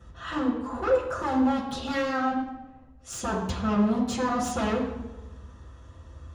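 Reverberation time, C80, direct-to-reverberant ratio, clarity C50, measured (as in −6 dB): 1.1 s, 7.0 dB, −9.0 dB, 4.5 dB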